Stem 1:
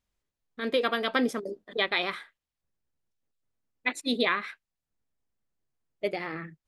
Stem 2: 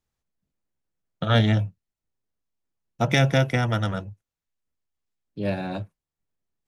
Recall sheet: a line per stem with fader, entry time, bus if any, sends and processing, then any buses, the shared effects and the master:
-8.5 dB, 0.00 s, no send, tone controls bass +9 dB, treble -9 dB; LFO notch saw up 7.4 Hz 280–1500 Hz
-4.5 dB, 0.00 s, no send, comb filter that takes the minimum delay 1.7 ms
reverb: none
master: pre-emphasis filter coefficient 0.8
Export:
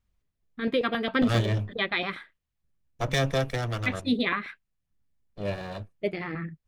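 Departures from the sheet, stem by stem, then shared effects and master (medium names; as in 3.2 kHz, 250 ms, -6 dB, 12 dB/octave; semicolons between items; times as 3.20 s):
stem 1 -8.5 dB -> +1.0 dB; master: missing pre-emphasis filter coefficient 0.8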